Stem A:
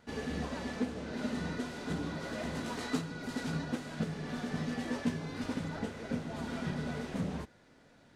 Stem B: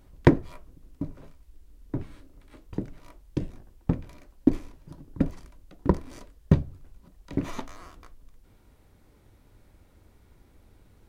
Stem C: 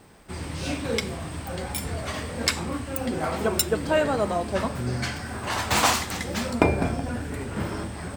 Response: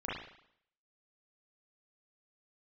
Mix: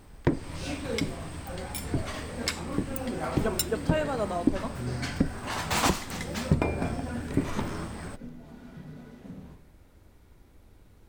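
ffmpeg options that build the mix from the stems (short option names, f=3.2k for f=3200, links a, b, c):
-filter_complex "[0:a]lowshelf=f=410:g=8.5,adelay=2100,volume=-17.5dB,asplit=2[a][b];[b]volume=-6.5dB[c];[1:a]volume=1dB[d];[2:a]volume=-5dB[e];[3:a]atrim=start_sample=2205[f];[c][f]afir=irnorm=-1:irlink=0[g];[a][d][e][g]amix=inputs=4:normalize=0,alimiter=limit=-10.5dB:level=0:latency=1:release=332"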